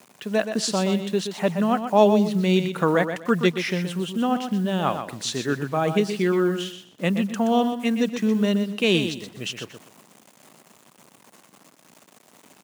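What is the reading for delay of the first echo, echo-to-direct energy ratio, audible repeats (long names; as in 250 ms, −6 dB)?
124 ms, −8.5 dB, 3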